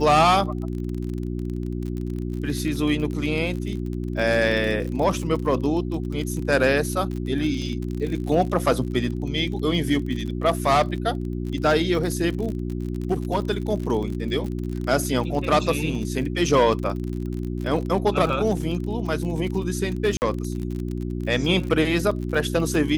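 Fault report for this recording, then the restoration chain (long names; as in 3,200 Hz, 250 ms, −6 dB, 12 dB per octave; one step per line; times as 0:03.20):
surface crackle 44 per second −29 dBFS
mains hum 60 Hz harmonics 6 −28 dBFS
0:20.17–0:20.22: drop-out 49 ms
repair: click removal
hum removal 60 Hz, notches 6
repair the gap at 0:20.17, 49 ms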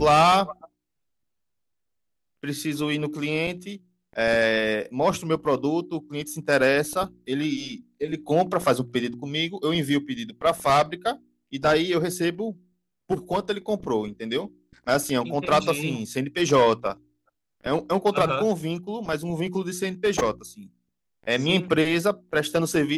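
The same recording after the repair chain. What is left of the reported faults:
none of them is left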